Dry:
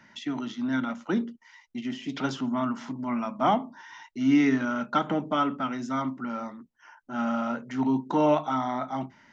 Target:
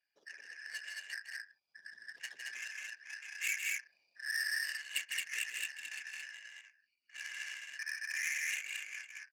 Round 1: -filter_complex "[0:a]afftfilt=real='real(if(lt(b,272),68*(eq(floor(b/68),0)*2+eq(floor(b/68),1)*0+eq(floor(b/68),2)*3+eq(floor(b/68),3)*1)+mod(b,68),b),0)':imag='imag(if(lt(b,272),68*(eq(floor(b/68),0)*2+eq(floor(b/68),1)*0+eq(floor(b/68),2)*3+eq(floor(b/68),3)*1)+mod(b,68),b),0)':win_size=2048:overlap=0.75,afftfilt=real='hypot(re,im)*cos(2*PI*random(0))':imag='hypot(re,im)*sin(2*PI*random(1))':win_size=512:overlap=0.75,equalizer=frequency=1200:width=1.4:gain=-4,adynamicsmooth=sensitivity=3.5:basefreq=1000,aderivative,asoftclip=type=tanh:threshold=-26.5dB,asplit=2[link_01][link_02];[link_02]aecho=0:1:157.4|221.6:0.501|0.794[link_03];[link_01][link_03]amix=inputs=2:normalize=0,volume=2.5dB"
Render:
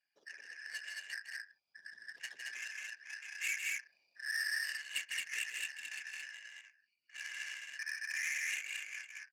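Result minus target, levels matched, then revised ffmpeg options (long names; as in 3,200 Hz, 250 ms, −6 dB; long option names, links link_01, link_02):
soft clipping: distortion +19 dB
-filter_complex "[0:a]afftfilt=real='real(if(lt(b,272),68*(eq(floor(b/68),0)*2+eq(floor(b/68),1)*0+eq(floor(b/68),2)*3+eq(floor(b/68),3)*1)+mod(b,68),b),0)':imag='imag(if(lt(b,272),68*(eq(floor(b/68),0)*2+eq(floor(b/68),1)*0+eq(floor(b/68),2)*3+eq(floor(b/68),3)*1)+mod(b,68),b),0)':win_size=2048:overlap=0.75,afftfilt=real='hypot(re,im)*cos(2*PI*random(0))':imag='hypot(re,im)*sin(2*PI*random(1))':win_size=512:overlap=0.75,equalizer=frequency=1200:width=1.4:gain=-4,adynamicsmooth=sensitivity=3.5:basefreq=1000,aderivative,asoftclip=type=tanh:threshold=-15dB,asplit=2[link_01][link_02];[link_02]aecho=0:1:157.4|221.6:0.501|0.794[link_03];[link_01][link_03]amix=inputs=2:normalize=0,volume=2.5dB"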